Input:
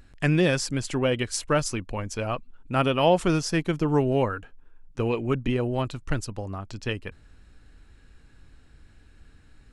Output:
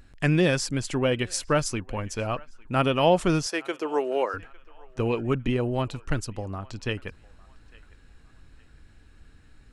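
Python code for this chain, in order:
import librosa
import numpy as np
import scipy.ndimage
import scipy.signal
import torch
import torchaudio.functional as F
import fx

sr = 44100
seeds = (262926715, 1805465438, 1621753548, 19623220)

p1 = fx.highpass(x, sr, hz=370.0, slope=24, at=(3.46, 4.34))
y = p1 + fx.echo_banded(p1, sr, ms=854, feedback_pct=41, hz=1500.0, wet_db=-21.5, dry=0)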